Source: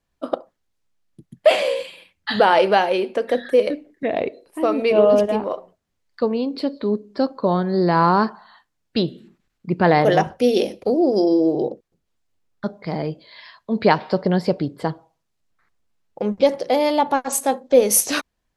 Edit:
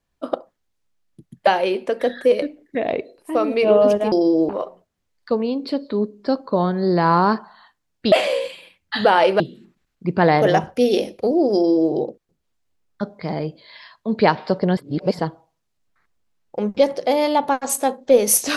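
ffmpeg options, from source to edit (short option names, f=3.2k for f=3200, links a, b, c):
-filter_complex "[0:a]asplit=8[a][b][c][d][e][f][g][h];[a]atrim=end=1.472[i];[b]atrim=start=2.748:end=5.402[j];[c]atrim=start=11.178:end=11.552[k];[d]atrim=start=5.398:end=9.032[l];[e]atrim=start=1.468:end=2.752[m];[f]atrim=start=9.028:end=14.402[n];[g]atrim=start=14.398:end=14.822,asetpts=PTS-STARTPTS,areverse[o];[h]atrim=start=14.818[p];[i][j]acrossfade=d=0.004:c1=hsin:c2=hsin[q];[q][k]acrossfade=d=0.004:c1=hsin:c2=hsin[r];[r][l]acrossfade=d=0.004:c1=hsin:c2=hsin[s];[s][m]acrossfade=d=0.004:c1=hsin:c2=hsin[t];[t][n]acrossfade=d=0.004:c1=hsin:c2=hsin[u];[u][o]acrossfade=d=0.004:c1=hsin:c2=hsin[v];[v][p]acrossfade=d=0.004:c1=hsin:c2=hsin"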